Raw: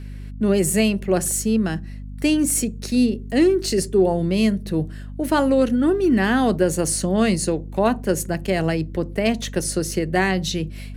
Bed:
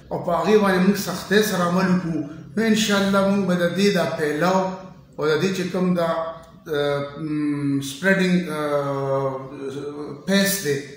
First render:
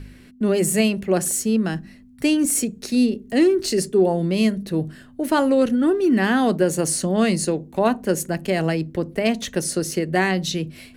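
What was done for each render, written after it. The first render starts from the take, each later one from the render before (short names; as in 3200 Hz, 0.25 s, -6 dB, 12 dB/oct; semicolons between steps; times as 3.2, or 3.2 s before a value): de-hum 50 Hz, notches 4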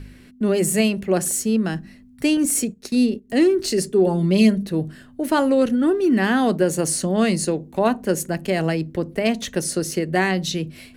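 2.37–3.3 gate -34 dBFS, range -11 dB; 4.06–4.67 comb 5 ms, depth 71%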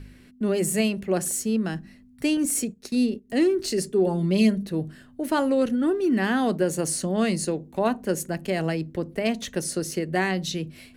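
gain -4.5 dB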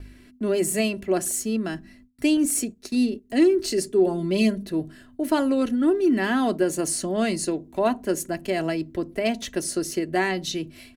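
gate with hold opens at -43 dBFS; comb 3 ms, depth 49%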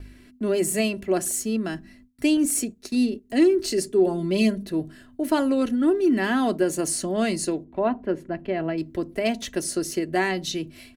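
7.64–8.78 air absorption 420 m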